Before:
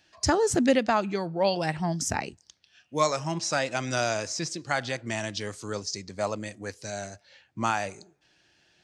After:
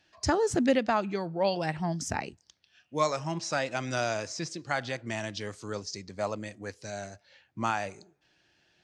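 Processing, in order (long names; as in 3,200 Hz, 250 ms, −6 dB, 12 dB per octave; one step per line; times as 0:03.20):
high-shelf EQ 7,600 Hz −9.5 dB
level −2.5 dB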